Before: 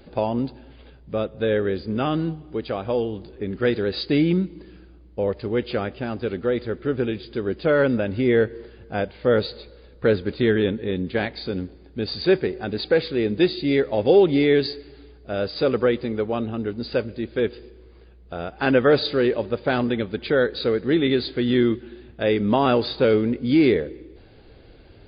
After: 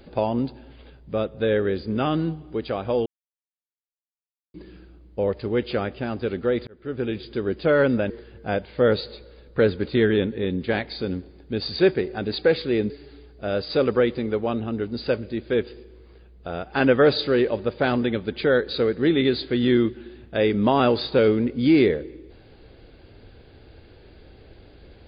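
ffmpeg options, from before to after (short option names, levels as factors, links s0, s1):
-filter_complex "[0:a]asplit=6[s0][s1][s2][s3][s4][s5];[s0]atrim=end=3.06,asetpts=PTS-STARTPTS,afade=t=out:st=3.056:d=0.004:c=hsin[s6];[s1]atrim=start=3.06:end=4.54,asetpts=PTS-STARTPTS,volume=0[s7];[s2]atrim=start=4.54:end=6.67,asetpts=PTS-STARTPTS,afade=t=in:d=0.004:c=hsin,afade=t=out:st=2.126:d=0.004:c=hsin[s8];[s3]atrim=start=6.67:end=8.102,asetpts=PTS-STARTPTS,afade=t=in:d=0.5[s9];[s4]atrim=start=8.558:end=13.362[s10];[s5]atrim=start=14.758[s11];[s6][s7][s8][s9]concat=n=4:v=0:a=1[s12];[s12][s10]acrossfade=d=0.004:c1=hsin:c2=hsin[s13];[s13][s11]acrossfade=d=0.004:c1=hsin:c2=hsin"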